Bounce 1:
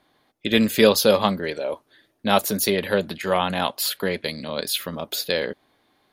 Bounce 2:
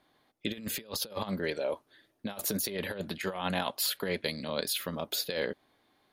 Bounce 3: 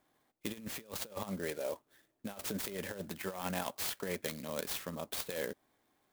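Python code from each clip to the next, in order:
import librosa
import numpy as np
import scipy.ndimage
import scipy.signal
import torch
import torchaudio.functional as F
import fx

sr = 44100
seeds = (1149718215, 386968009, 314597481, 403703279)

y1 = fx.over_compress(x, sr, threshold_db=-24.0, ratio=-0.5)
y1 = F.gain(torch.from_numpy(y1), -8.5).numpy()
y2 = fx.clock_jitter(y1, sr, seeds[0], jitter_ms=0.051)
y2 = F.gain(torch.from_numpy(y2), -5.5).numpy()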